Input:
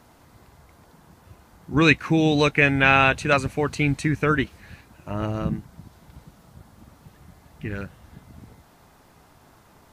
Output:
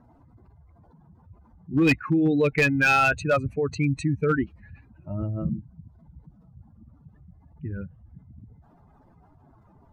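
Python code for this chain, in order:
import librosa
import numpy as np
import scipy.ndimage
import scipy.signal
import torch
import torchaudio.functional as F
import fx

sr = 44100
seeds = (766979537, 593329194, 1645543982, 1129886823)

y = fx.spec_expand(x, sr, power=2.3)
y = np.clip(10.0 ** (12.5 / 20.0) * y, -1.0, 1.0) / 10.0 ** (12.5 / 20.0)
y = F.gain(torch.from_numpy(y), -1.5).numpy()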